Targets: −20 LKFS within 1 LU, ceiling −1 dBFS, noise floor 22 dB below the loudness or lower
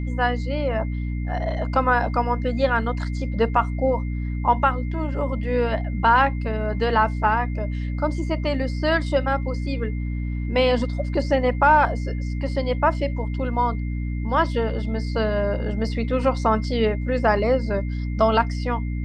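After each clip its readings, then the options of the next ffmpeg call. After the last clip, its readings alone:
mains hum 60 Hz; hum harmonics up to 300 Hz; level of the hum −24 dBFS; interfering tone 2,100 Hz; level of the tone −44 dBFS; integrated loudness −23.0 LKFS; sample peak −5.0 dBFS; target loudness −20.0 LKFS
→ -af "bandreject=frequency=60:width_type=h:width=4,bandreject=frequency=120:width_type=h:width=4,bandreject=frequency=180:width_type=h:width=4,bandreject=frequency=240:width_type=h:width=4,bandreject=frequency=300:width_type=h:width=4"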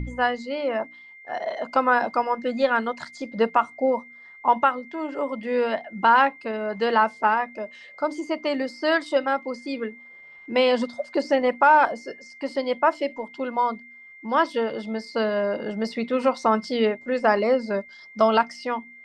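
mains hum none found; interfering tone 2,100 Hz; level of the tone −44 dBFS
→ -af "bandreject=frequency=2100:width=30"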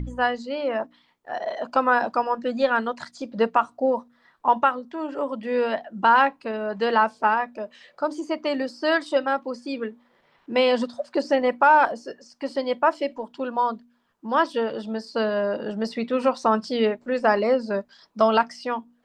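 interfering tone none found; integrated loudness −24.0 LKFS; sample peak −6.0 dBFS; target loudness −20.0 LKFS
→ -af "volume=4dB"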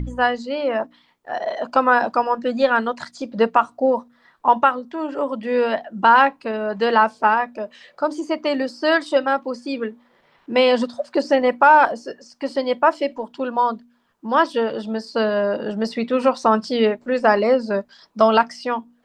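integrated loudness −20.0 LKFS; sample peak −2.0 dBFS; background noise floor −60 dBFS

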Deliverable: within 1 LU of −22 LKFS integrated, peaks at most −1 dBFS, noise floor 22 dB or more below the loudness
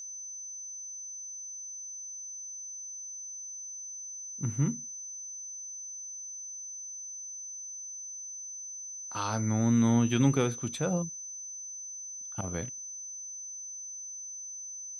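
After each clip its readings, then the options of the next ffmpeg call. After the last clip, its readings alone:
interfering tone 6,100 Hz; level of the tone −39 dBFS; integrated loudness −34.0 LKFS; sample peak −13.5 dBFS; target loudness −22.0 LKFS
→ -af "bandreject=frequency=6100:width=30"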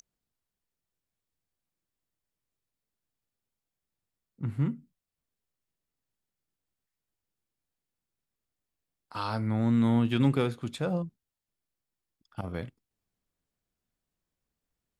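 interfering tone none found; integrated loudness −29.5 LKFS; sample peak −14.0 dBFS; target loudness −22.0 LKFS
→ -af "volume=7.5dB"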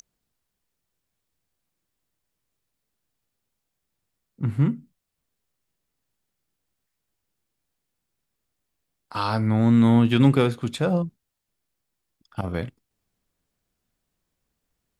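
integrated loudness −22.0 LKFS; sample peak −6.5 dBFS; background noise floor −81 dBFS

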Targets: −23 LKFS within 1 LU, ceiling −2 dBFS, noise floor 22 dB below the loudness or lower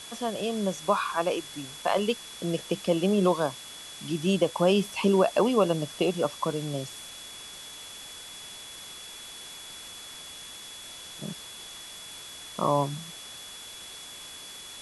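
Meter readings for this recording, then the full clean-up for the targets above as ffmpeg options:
interfering tone 3,400 Hz; level of the tone −44 dBFS; background noise floor −44 dBFS; target noise floor −50 dBFS; integrated loudness −27.5 LKFS; sample peak −11.0 dBFS; target loudness −23.0 LKFS
→ -af "bandreject=frequency=3400:width=30"
-af "afftdn=noise_reduction=6:noise_floor=-44"
-af "volume=4.5dB"

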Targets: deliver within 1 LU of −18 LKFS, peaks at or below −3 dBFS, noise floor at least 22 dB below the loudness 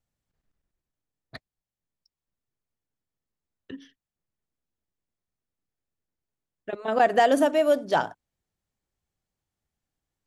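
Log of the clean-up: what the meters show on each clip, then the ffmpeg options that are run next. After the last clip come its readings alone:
integrated loudness −22.5 LKFS; sample peak −9.0 dBFS; target loudness −18.0 LKFS
→ -af "volume=4.5dB"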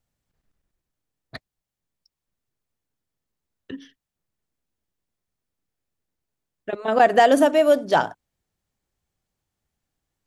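integrated loudness −18.0 LKFS; sample peak −4.5 dBFS; background noise floor −86 dBFS

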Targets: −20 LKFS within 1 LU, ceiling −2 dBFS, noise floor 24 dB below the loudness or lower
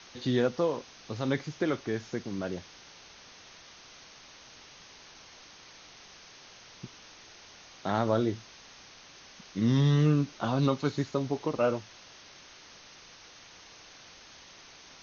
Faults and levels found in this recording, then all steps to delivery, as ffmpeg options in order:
background noise floor −53 dBFS; target noise floor −54 dBFS; integrated loudness −30.0 LKFS; sample peak −13.0 dBFS; target loudness −20.0 LKFS
→ -af "afftdn=noise_reduction=6:noise_floor=-53"
-af "volume=10dB"

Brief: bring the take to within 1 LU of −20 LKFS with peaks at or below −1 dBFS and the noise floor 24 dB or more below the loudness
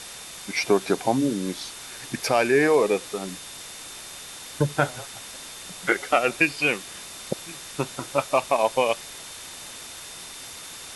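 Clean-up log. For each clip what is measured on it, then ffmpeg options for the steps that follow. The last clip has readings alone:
interfering tone 3,600 Hz; level of the tone −47 dBFS; background noise floor −40 dBFS; target noise floor −49 dBFS; integrated loudness −24.5 LKFS; sample peak −5.5 dBFS; target loudness −20.0 LKFS
→ -af "bandreject=frequency=3600:width=30"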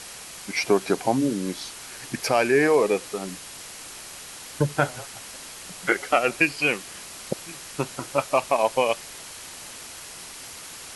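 interfering tone none found; background noise floor −41 dBFS; target noise floor −49 dBFS
→ -af "afftdn=noise_reduction=8:noise_floor=-41"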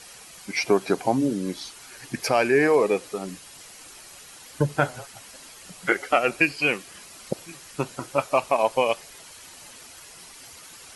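background noise floor −46 dBFS; target noise floor −48 dBFS
→ -af "afftdn=noise_reduction=6:noise_floor=-46"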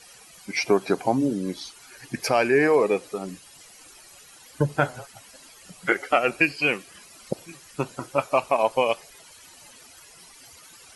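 background noise floor −50 dBFS; integrated loudness −24.0 LKFS; sample peak −5.5 dBFS; target loudness −20.0 LKFS
→ -af "volume=4dB"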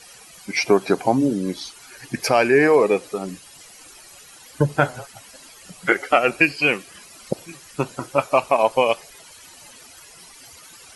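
integrated loudness −20.0 LKFS; sample peak −1.5 dBFS; background noise floor −46 dBFS

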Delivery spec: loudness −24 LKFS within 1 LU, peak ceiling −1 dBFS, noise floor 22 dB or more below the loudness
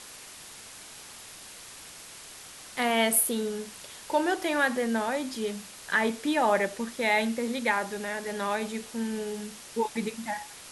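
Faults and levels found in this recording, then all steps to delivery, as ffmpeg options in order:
background noise floor −46 dBFS; target noise floor −51 dBFS; integrated loudness −28.5 LKFS; sample peak −9.0 dBFS; target loudness −24.0 LKFS
→ -af "afftdn=noise_reduction=6:noise_floor=-46"
-af "volume=4.5dB"

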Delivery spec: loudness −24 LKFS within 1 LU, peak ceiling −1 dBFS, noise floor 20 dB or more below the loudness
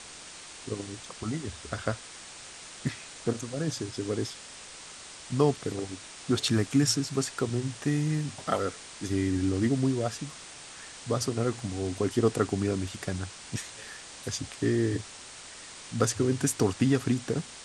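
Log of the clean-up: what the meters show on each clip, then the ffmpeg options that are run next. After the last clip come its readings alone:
background noise floor −46 dBFS; target noise floor −50 dBFS; integrated loudness −30.0 LKFS; sample peak −10.0 dBFS; target loudness −24.0 LKFS
→ -af "afftdn=noise_reduction=6:noise_floor=-46"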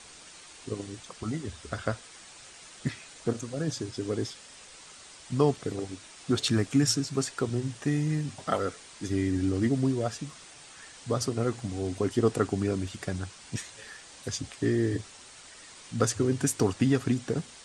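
background noise floor −50 dBFS; integrated loudness −30.0 LKFS; sample peak −10.0 dBFS; target loudness −24.0 LKFS
→ -af "volume=6dB"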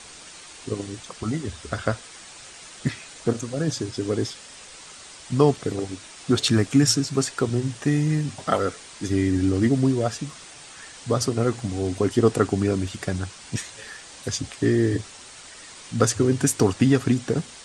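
integrated loudness −24.0 LKFS; sample peak −4.0 dBFS; background noise floor −44 dBFS

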